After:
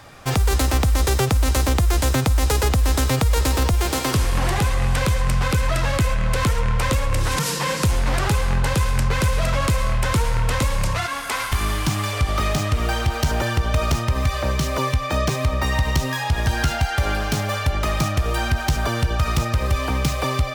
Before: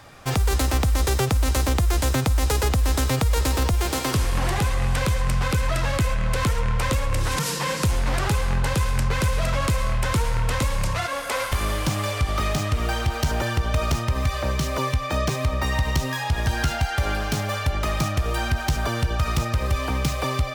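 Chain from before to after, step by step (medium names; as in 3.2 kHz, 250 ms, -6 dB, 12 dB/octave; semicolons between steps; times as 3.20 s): 10.97–12.13 s: peaking EQ 540 Hz -13 dB 0.33 oct; trim +2.5 dB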